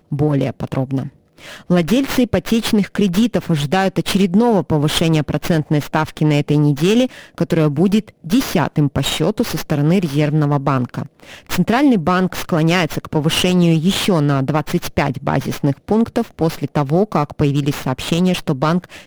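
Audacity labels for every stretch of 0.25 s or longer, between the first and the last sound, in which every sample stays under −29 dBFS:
1.080000	1.430000	silence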